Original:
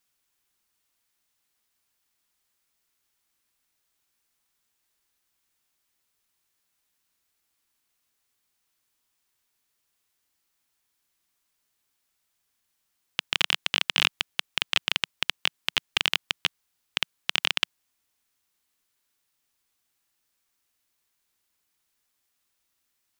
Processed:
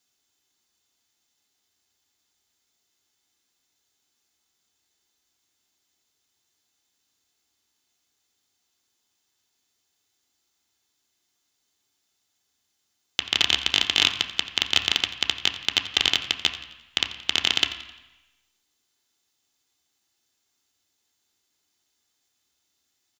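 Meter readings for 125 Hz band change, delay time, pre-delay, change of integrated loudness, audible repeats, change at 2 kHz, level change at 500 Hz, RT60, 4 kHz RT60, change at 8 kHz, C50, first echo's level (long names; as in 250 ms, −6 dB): +3.0 dB, 87 ms, 3 ms, +4.0 dB, 1, +1.0 dB, +3.5 dB, 1.0 s, 0.95 s, +5.5 dB, 10.0 dB, −17.0 dB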